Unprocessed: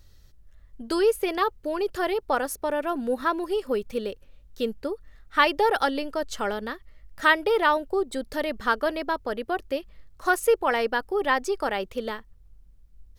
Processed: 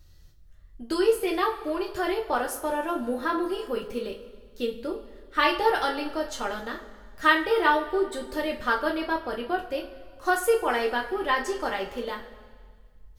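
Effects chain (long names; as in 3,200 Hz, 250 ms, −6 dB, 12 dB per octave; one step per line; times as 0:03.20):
coupled-rooms reverb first 0.27 s, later 1.8 s, from −18 dB, DRR −1 dB
level −4.5 dB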